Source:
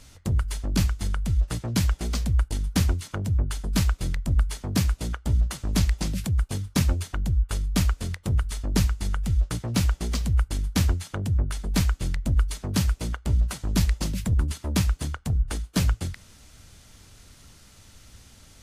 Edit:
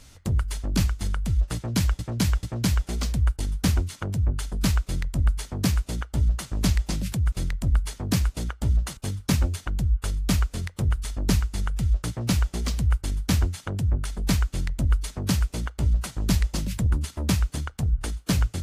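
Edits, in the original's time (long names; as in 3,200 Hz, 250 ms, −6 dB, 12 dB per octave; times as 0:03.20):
0:01.55–0:01.99: repeat, 3 plays
0:03.96–0:05.61: duplicate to 0:06.44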